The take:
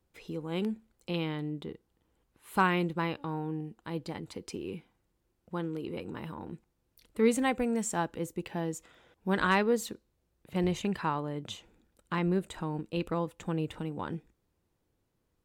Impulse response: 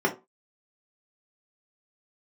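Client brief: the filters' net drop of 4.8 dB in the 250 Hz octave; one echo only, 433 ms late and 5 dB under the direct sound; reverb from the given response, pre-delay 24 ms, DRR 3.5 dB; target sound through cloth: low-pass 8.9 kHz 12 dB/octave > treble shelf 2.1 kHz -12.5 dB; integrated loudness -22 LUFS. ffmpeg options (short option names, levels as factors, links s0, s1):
-filter_complex "[0:a]equalizer=f=250:t=o:g=-7,aecho=1:1:433:0.562,asplit=2[s0][s1];[1:a]atrim=start_sample=2205,adelay=24[s2];[s1][s2]afir=irnorm=-1:irlink=0,volume=0.133[s3];[s0][s3]amix=inputs=2:normalize=0,lowpass=8900,highshelf=f=2100:g=-12.5,volume=3.76"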